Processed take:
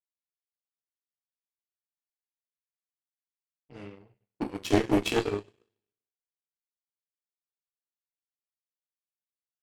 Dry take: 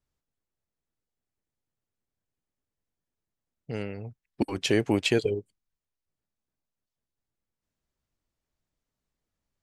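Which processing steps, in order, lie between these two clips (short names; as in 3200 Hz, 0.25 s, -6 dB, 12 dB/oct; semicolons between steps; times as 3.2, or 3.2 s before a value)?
two-slope reverb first 0.36 s, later 1.6 s, from -16 dB, DRR -4.5 dB; power-law curve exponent 2; one-sided clip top -24.5 dBFS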